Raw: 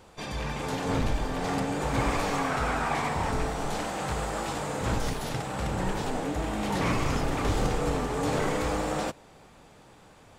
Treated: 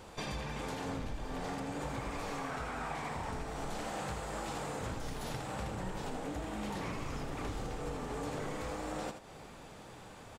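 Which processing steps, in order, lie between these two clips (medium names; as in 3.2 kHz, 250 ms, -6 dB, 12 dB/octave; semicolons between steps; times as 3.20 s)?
compression 16:1, threshold -38 dBFS, peak gain reduction 17 dB; on a send: delay 81 ms -8.5 dB; on the sum: trim +2 dB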